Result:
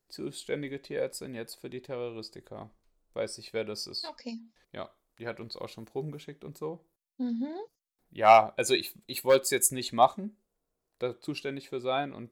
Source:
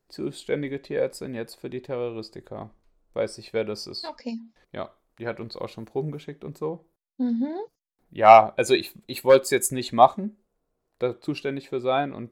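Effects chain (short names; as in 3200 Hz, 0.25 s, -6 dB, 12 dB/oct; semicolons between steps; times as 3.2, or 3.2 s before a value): high shelf 3200 Hz +9 dB; gain -7 dB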